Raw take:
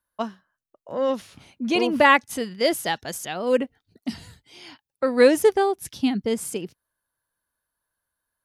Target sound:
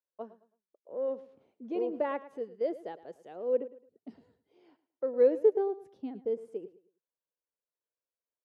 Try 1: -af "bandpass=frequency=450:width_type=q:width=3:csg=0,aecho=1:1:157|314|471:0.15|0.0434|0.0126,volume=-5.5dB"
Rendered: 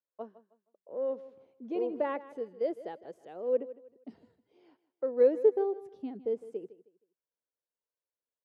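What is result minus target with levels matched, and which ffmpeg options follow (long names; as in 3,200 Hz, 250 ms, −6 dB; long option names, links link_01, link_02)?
echo 49 ms late
-af "bandpass=frequency=450:width_type=q:width=3:csg=0,aecho=1:1:108|216|324:0.15|0.0434|0.0126,volume=-5.5dB"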